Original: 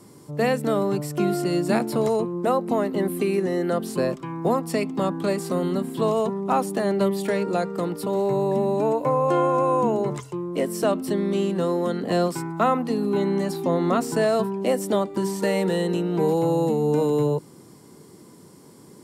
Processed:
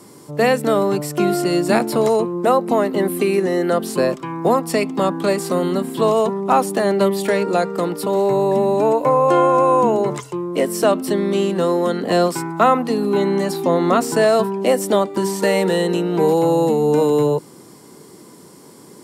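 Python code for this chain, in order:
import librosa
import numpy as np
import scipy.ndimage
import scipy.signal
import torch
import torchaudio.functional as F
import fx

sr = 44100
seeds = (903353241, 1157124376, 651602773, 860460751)

y = fx.low_shelf(x, sr, hz=170.0, db=-10.5)
y = y * librosa.db_to_amplitude(7.5)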